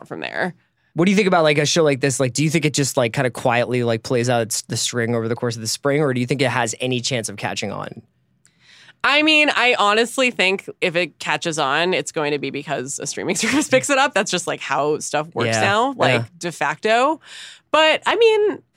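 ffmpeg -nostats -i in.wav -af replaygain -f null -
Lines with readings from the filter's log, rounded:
track_gain = -1.7 dB
track_peak = 0.509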